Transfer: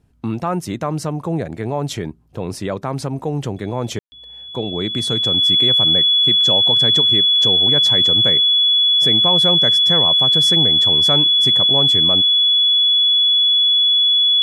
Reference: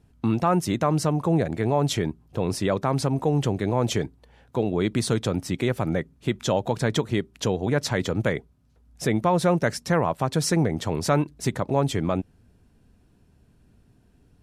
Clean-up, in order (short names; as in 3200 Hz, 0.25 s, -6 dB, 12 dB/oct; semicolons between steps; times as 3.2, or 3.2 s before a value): notch 3400 Hz, Q 30; room tone fill 3.99–4.12